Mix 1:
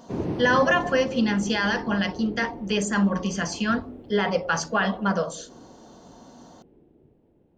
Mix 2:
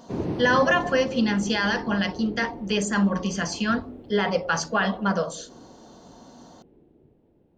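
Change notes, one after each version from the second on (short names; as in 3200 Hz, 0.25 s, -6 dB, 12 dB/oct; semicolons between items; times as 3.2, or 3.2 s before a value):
master: add bell 4200 Hz +2.5 dB 0.44 oct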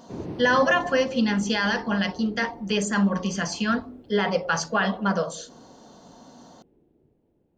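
background -6.0 dB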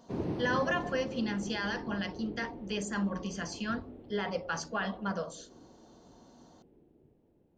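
speech -10.5 dB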